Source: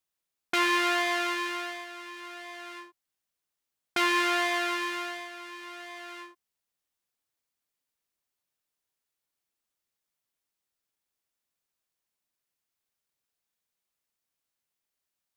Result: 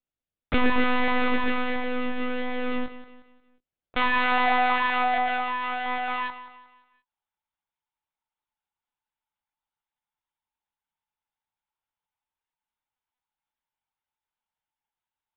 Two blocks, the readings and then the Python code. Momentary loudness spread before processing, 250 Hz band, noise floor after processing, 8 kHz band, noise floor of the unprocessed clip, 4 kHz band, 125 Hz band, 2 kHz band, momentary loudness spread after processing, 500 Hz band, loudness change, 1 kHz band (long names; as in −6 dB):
18 LU, +7.5 dB, below −85 dBFS, below −35 dB, below −85 dBFS, −1.5 dB, can't be measured, +3.0 dB, 10 LU, +4.5 dB, +2.0 dB, +7.0 dB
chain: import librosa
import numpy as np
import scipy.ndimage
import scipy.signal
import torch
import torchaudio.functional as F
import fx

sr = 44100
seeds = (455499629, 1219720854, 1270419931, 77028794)

p1 = fx.fuzz(x, sr, gain_db=48.0, gate_db=-46.0)
p2 = x + (p1 * librosa.db_to_amplitude(-7.0))
p3 = fx.filter_sweep_highpass(p2, sr, from_hz=330.0, to_hz=840.0, start_s=3.12, end_s=5.53, q=5.0)
p4 = fx.echo_feedback(p3, sr, ms=179, feedback_pct=40, wet_db=-13)
p5 = fx.lpc_monotone(p4, sr, seeds[0], pitch_hz=250.0, order=10)
y = p5 * librosa.db_to_amplitude(-5.5)